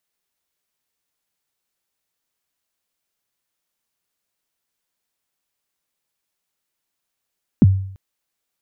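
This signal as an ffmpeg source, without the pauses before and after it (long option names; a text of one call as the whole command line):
ffmpeg -f lavfi -i "aevalsrc='0.596*pow(10,-3*t/0.62)*sin(2*PI*(290*0.031/log(96/290)*(exp(log(96/290)*min(t,0.031)/0.031)-1)+96*max(t-0.031,0)))':duration=0.34:sample_rate=44100" out.wav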